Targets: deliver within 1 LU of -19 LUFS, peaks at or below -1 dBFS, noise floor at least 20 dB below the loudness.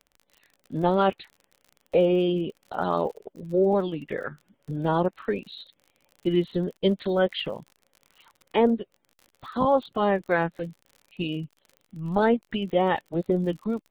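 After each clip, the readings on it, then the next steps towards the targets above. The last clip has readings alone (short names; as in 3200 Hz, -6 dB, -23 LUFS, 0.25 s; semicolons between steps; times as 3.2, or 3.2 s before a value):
ticks 46/s; loudness -26.0 LUFS; peak -10.0 dBFS; loudness target -19.0 LUFS
-> de-click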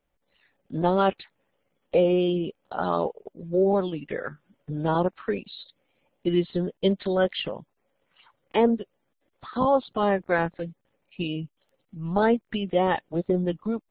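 ticks 0.072/s; loudness -26.0 LUFS; peak -10.0 dBFS; loudness target -19.0 LUFS
-> gain +7 dB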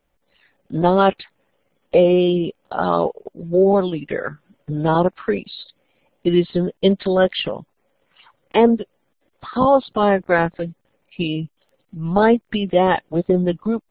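loudness -19.0 LUFS; peak -3.0 dBFS; noise floor -69 dBFS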